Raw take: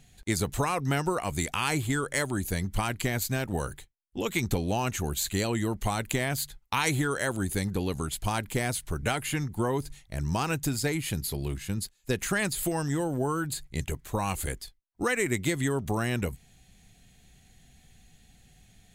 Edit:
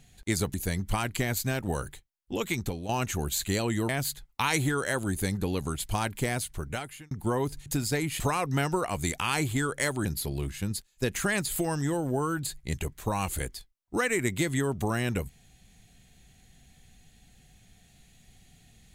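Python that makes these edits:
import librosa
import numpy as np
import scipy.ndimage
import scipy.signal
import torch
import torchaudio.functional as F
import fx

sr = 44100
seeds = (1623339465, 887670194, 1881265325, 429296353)

y = fx.edit(x, sr, fx.move(start_s=0.54, length_s=1.85, to_s=11.12),
    fx.fade_out_to(start_s=4.23, length_s=0.51, floor_db=-10.5),
    fx.cut(start_s=5.74, length_s=0.48),
    fx.fade_out_span(start_s=8.4, length_s=1.04, curve='qsin'),
    fx.cut(start_s=9.99, length_s=0.59), tone=tone)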